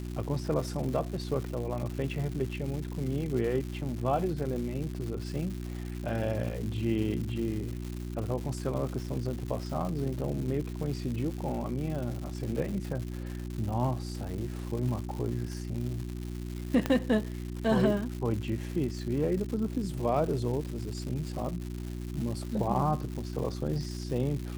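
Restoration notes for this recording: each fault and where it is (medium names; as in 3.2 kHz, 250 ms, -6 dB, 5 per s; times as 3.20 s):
crackle 280 per s -36 dBFS
hum 60 Hz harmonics 6 -37 dBFS
16.86 s: pop -14 dBFS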